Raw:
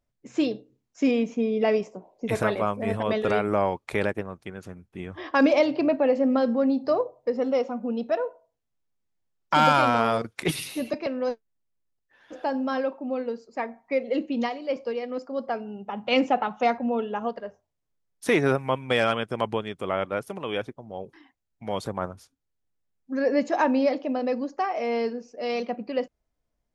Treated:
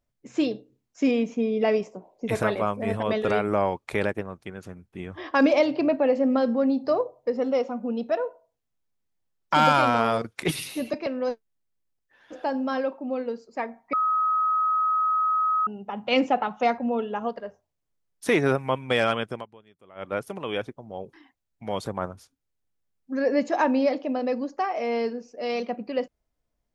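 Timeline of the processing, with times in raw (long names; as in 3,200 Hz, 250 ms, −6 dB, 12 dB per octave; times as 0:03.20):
0:13.93–0:15.67: beep over 1,270 Hz −20 dBFS
0:19.28–0:20.13: duck −23 dB, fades 0.18 s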